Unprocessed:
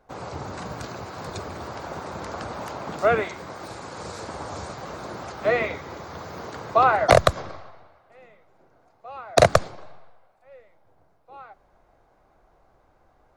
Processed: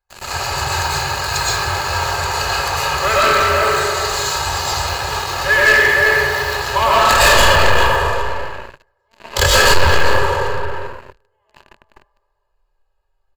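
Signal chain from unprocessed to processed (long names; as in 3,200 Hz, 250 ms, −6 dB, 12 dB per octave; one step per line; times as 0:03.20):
pitch glide at a constant tempo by −5 semitones starting unshifted
guitar amp tone stack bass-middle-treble 10-0-10
comb filter 2.4 ms, depth 83%
hum removal 120.7 Hz, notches 34
tape delay 387 ms, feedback 30%, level −4 dB, low-pass 1,700 Hz
comb and all-pass reverb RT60 1.9 s, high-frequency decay 0.45×, pre-delay 80 ms, DRR −9.5 dB
leveller curve on the samples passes 5
EQ curve with evenly spaced ripples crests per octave 1.4, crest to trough 8 dB
level −3.5 dB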